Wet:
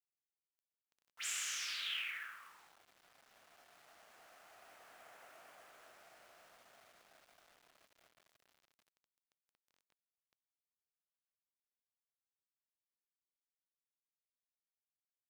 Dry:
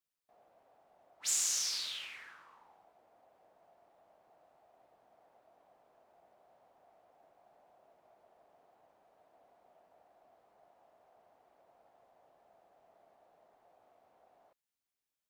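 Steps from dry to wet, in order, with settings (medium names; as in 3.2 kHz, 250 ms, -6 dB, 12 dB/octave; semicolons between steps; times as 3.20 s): Doppler pass-by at 5.23 s, 9 m/s, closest 7.1 m; high-order bell 2 kHz +15 dB; filtered feedback delay 84 ms, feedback 61%, low-pass 4.7 kHz, level -21 dB; companded quantiser 6-bit; bass shelf 180 Hz -6 dB; trim +4 dB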